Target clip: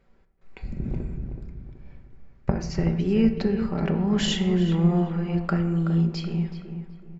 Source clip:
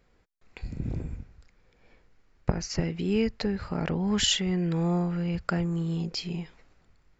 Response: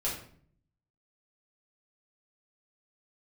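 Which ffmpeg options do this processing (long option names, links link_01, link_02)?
-filter_complex "[0:a]highshelf=frequency=3500:gain=-10,aecho=1:1:5.2:0.37,asplit=2[link_01][link_02];[link_02]adelay=376,lowpass=frequency=1800:poles=1,volume=-8dB,asplit=2[link_03][link_04];[link_04]adelay=376,lowpass=frequency=1800:poles=1,volume=0.36,asplit=2[link_05][link_06];[link_06]adelay=376,lowpass=frequency=1800:poles=1,volume=0.36,asplit=2[link_07][link_08];[link_08]adelay=376,lowpass=frequency=1800:poles=1,volume=0.36[link_09];[link_01][link_03][link_05][link_07][link_09]amix=inputs=5:normalize=0,asplit=2[link_10][link_11];[1:a]atrim=start_sample=2205,asetrate=22491,aresample=44100,highshelf=frequency=4600:gain=-8.5[link_12];[link_11][link_12]afir=irnorm=-1:irlink=0,volume=-15dB[link_13];[link_10][link_13]amix=inputs=2:normalize=0"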